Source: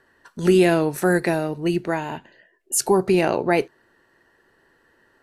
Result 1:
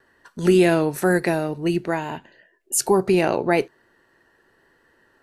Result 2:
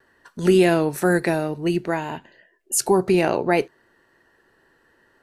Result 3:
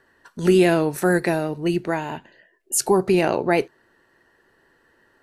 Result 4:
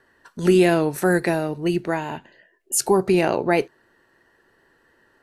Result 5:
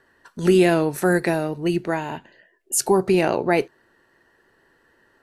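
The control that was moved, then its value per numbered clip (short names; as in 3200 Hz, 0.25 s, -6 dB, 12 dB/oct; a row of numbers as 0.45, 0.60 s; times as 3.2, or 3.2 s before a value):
vibrato, rate: 1.1, 0.6, 11, 3.1, 6.1 Hz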